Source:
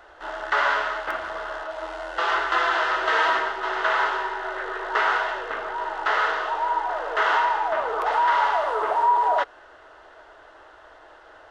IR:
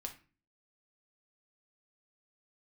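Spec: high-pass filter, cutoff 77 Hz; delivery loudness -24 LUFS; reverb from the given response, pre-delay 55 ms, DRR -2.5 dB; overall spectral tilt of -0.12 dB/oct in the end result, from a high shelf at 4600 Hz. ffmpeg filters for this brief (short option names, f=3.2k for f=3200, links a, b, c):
-filter_complex "[0:a]highpass=77,highshelf=f=4.6k:g=8,asplit=2[a][b];[1:a]atrim=start_sample=2205,adelay=55[c];[b][c]afir=irnorm=-1:irlink=0,volume=5dB[d];[a][d]amix=inputs=2:normalize=0,volume=-6dB"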